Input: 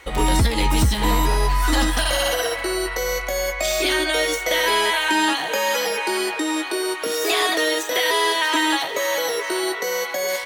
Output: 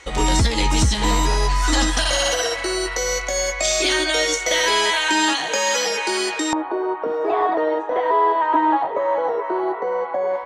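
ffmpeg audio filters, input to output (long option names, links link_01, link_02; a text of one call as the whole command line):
ffmpeg -i in.wav -af "asetnsamples=nb_out_samples=441:pad=0,asendcmd='6.53 lowpass f 910',lowpass=frequency=6800:width_type=q:width=2.4" out.wav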